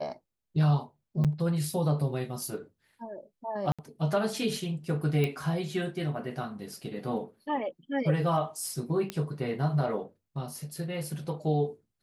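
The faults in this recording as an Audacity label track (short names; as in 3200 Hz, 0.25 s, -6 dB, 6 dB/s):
1.240000	1.250000	gap 7 ms
3.720000	3.790000	gap 66 ms
5.240000	5.240000	pop -16 dBFS
9.100000	9.100000	pop -17 dBFS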